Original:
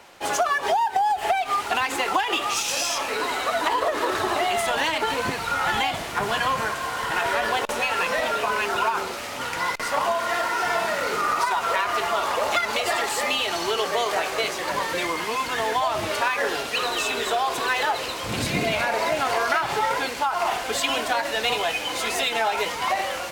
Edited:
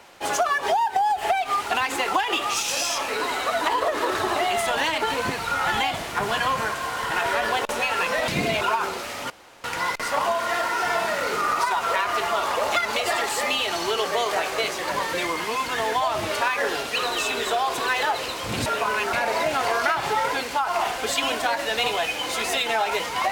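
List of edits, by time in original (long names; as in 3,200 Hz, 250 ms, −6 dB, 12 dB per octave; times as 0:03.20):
0:08.28–0:08.75: swap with 0:18.46–0:18.79
0:09.44: splice in room tone 0.34 s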